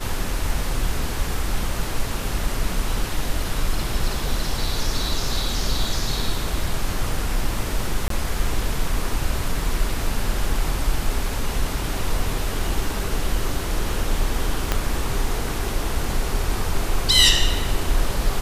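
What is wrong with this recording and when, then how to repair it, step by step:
0:08.08–0:08.10: drop-out 23 ms
0:14.72: click −5 dBFS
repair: click removal
repair the gap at 0:08.08, 23 ms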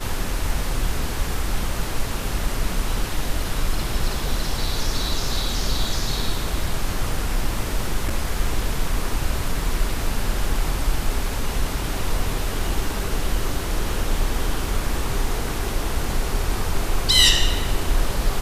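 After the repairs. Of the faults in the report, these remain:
0:14.72: click

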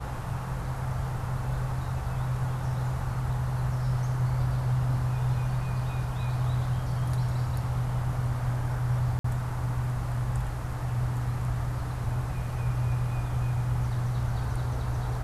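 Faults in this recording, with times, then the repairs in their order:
0:09.19–0:09.24: drop-out 54 ms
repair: repair the gap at 0:09.19, 54 ms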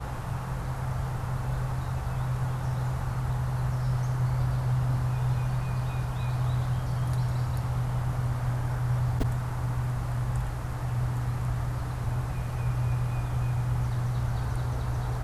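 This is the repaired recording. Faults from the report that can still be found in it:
none of them is left

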